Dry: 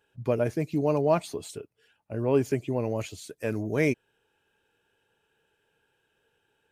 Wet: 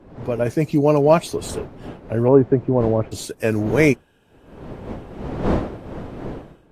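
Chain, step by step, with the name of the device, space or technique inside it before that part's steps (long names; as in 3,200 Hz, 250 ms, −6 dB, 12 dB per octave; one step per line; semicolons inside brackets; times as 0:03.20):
0:02.28–0:03.12: inverse Chebyshev low-pass filter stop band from 7,300 Hz, stop band 80 dB
smartphone video outdoors (wind on the microphone 410 Hz −43 dBFS; automatic gain control gain up to 14 dB; AAC 64 kbit/s 32,000 Hz)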